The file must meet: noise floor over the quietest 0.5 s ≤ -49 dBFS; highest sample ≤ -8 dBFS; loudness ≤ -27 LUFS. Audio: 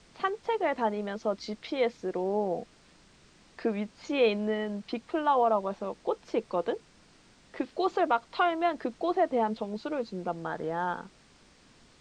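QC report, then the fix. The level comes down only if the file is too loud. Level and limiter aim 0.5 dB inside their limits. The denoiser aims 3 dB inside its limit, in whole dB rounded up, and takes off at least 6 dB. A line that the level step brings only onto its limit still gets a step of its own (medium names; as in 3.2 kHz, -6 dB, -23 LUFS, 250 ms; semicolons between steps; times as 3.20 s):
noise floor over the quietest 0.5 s -59 dBFS: pass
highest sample -13.5 dBFS: pass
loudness -30.5 LUFS: pass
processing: none needed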